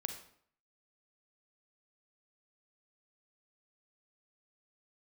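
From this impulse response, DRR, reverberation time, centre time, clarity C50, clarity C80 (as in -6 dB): 6.0 dB, 0.60 s, 16 ms, 7.5 dB, 11.0 dB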